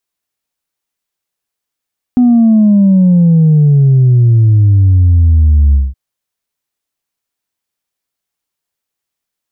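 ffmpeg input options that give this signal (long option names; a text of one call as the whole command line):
ffmpeg -f lavfi -i "aevalsrc='0.596*clip((3.77-t)/0.2,0,1)*tanh(1.06*sin(2*PI*250*3.77/log(65/250)*(exp(log(65/250)*t/3.77)-1)))/tanh(1.06)':duration=3.77:sample_rate=44100" out.wav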